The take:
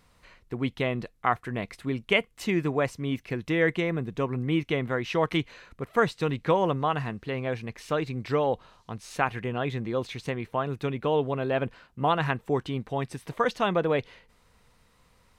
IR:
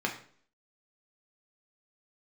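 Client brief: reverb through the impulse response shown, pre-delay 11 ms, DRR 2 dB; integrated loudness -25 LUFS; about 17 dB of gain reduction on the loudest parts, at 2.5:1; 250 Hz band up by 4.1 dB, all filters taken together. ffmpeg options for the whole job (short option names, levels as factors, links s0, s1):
-filter_complex "[0:a]equalizer=f=250:t=o:g=5.5,acompressor=threshold=0.00631:ratio=2.5,asplit=2[s0][s1];[1:a]atrim=start_sample=2205,adelay=11[s2];[s1][s2]afir=irnorm=-1:irlink=0,volume=0.335[s3];[s0][s3]amix=inputs=2:normalize=0,volume=5.01"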